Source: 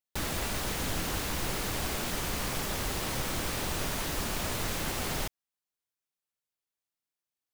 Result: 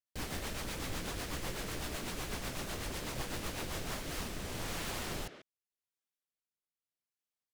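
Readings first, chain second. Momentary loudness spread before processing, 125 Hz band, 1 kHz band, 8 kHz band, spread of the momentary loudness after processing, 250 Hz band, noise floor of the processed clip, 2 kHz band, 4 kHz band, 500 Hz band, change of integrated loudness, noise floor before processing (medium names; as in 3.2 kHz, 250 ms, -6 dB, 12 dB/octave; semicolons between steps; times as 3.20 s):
0 LU, -6.5 dB, -7.5 dB, -8.0 dB, 2 LU, -6.0 dB, under -85 dBFS, -6.5 dB, -7.0 dB, -6.0 dB, -7.5 dB, under -85 dBFS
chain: speakerphone echo 140 ms, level -7 dB; rotary cabinet horn 8 Hz, later 0.85 Hz, at 3.50 s; loudspeaker Doppler distortion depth 0.89 ms; trim -4.5 dB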